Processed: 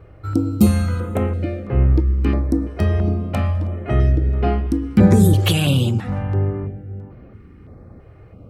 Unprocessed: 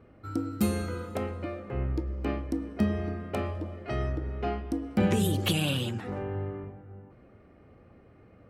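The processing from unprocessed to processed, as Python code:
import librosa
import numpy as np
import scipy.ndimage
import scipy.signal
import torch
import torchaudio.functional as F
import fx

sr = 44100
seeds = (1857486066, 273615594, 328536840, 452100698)

y = fx.low_shelf(x, sr, hz=230.0, db=9.5)
y = fx.filter_held_notch(y, sr, hz=3.0, low_hz=230.0, high_hz=8000.0)
y = y * librosa.db_to_amplitude(8.0)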